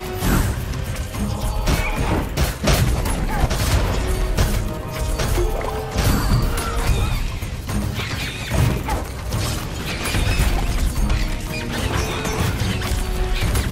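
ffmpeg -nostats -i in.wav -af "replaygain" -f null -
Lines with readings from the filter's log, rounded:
track_gain = +5.4 dB
track_peak = 0.338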